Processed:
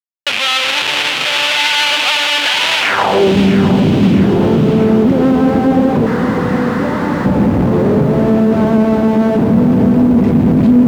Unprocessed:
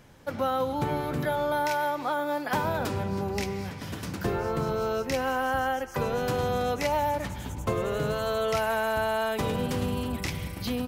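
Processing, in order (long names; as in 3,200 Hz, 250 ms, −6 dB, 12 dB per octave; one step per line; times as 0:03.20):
loose part that buzzes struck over −41 dBFS, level −30 dBFS
high-shelf EQ 5,400 Hz −3 dB
tape delay 182 ms, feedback 85%, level −7.5 dB, low-pass 1,200 Hz
downward compressor 6 to 1, threshold −28 dBFS, peak gain reduction 6.5 dB
0:00.81–0:01.43: low-shelf EQ 460 Hz +5 dB
0:06.06–0:07.26: sound drawn into the spectrogram noise 880–2,100 Hz −25 dBFS
comparator with hysteresis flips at −43 dBFS
band-pass filter sweep 3,000 Hz → 220 Hz, 0:02.80–0:03.36
boost into a limiter +33.5 dB
feedback echo at a low word length 656 ms, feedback 55%, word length 6 bits, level −11 dB
level −3 dB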